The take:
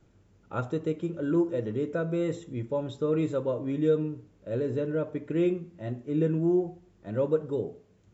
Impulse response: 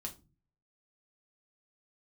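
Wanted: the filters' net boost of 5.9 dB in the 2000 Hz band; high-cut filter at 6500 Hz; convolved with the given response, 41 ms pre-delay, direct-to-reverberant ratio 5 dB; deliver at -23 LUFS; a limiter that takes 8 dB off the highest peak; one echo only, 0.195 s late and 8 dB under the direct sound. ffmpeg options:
-filter_complex "[0:a]lowpass=6.5k,equalizer=f=2k:t=o:g=8.5,alimiter=limit=-21.5dB:level=0:latency=1,aecho=1:1:195:0.398,asplit=2[a][b];[1:a]atrim=start_sample=2205,adelay=41[c];[b][c]afir=irnorm=-1:irlink=0,volume=-2.5dB[d];[a][d]amix=inputs=2:normalize=0,volume=6.5dB"

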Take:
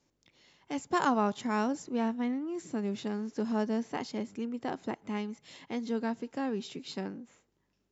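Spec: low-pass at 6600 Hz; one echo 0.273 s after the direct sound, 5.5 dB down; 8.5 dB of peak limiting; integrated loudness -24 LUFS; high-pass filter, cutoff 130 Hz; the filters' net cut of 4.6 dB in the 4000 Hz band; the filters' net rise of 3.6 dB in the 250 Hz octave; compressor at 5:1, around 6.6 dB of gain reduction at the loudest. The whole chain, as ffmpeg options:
-af "highpass=130,lowpass=6.6k,equalizer=f=250:t=o:g=4.5,equalizer=f=4k:t=o:g=-5.5,acompressor=threshold=-28dB:ratio=5,alimiter=level_in=4dB:limit=-24dB:level=0:latency=1,volume=-4dB,aecho=1:1:273:0.531,volume=12.5dB"

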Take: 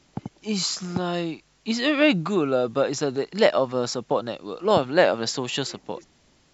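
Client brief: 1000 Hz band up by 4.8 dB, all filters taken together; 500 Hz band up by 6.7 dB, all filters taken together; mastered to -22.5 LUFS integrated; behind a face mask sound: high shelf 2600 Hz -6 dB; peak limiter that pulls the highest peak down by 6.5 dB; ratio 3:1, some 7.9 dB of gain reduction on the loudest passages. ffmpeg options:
-af "equalizer=f=500:t=o:g=7,equalizer=f=1k:t=o:g=4.5,acompressor=threshold=-17dB:ratio=3,alimiter=limit=-12.5dB:level=0:latency=1,highshelf=f=2.6k:g=-6,volume=2.5dB"

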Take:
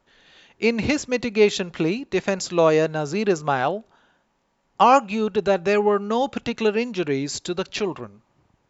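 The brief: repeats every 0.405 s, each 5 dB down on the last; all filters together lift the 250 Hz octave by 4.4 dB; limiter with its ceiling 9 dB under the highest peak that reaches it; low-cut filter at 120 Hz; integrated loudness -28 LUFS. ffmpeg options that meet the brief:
-af "highpass=120,equalizer=f=250:t=o:g=6,alimiter=limit=-12dB:level=0:latency=1,aecho=1:1:405|810|1215|1620|2025|2430|2835:0.562|0.315|0.176|0.0988|0.0553|0.031|0.0173,volume=-5.5dB"

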